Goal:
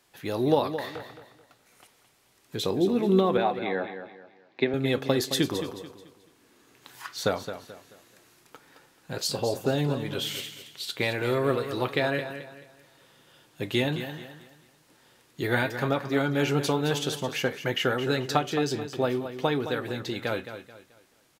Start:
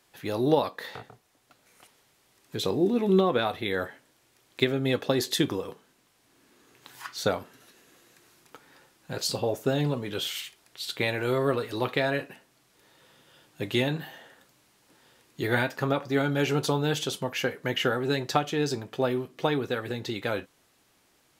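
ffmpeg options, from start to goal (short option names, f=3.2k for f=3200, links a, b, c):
-filter_complex "[0:a]asettb=1/sr,asplit=3[a][b][c];[a]atrim=end=3.374[d];[b]atrim=start=3.37:end=4.74,asetpts=PTS-STARTPTS,afade=t=in:d=0.004:c=qsin,afade=t=out:st=1.366:d=0.004:c=qsin,highpass=f=150:w=0.5412,highpass=f=150:w=1.3066,equalizer=f=800:t=q:w=4:g=7,equalizer=f=1.3k:t=q:w=4:g=-8,equalizer=f=3.2k:t=q:w=4:g=-10,lowpass=f=3.8k:w=0.5412,lowpass=f=3.8k:w=1.3066[e];[c]atrim=start=4.736[f];[d][e]acrossfade=d=0.004:c1=hsin:c2=qsin[g];[g][f]acrossfade=d=0.004:c1=qsin:c2=hsin,aecho=1:1:217|434|651|868:0.299|0.0985|0.0325|0.0107"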